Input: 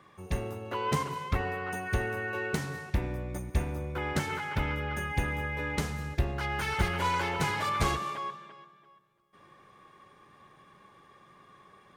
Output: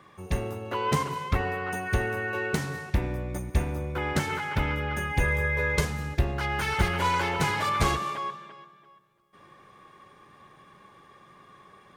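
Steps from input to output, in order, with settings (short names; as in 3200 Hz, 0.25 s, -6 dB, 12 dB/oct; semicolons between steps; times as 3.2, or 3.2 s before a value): 5.2–5.85 comb 1.9 ms, depth 87%; gain +3.5 dB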